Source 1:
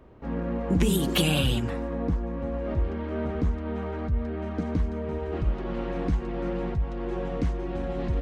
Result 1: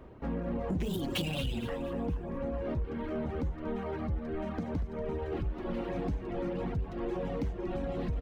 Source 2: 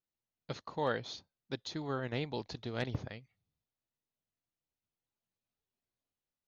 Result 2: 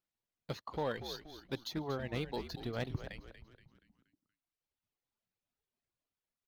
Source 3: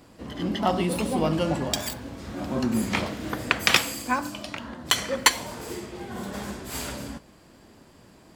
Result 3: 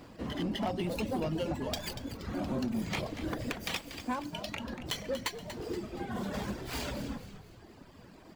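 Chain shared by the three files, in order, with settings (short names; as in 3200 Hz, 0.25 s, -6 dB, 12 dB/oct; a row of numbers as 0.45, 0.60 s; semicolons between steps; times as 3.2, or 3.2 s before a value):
median filter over 5 samples; reverb removal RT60 1.4 s; dynamic EQ 1400 Hz, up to -6 dB, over -45 dBFS, Q 1.4; compressor 4:1, threshold -31 dBFS; soft clip -27.5 dBFS; frequency-shifting echo 0.237 s, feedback 44%, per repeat -80 Hz, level -11 dB; gain +2 dB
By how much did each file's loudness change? -6.5, -1.5, -9.5 LU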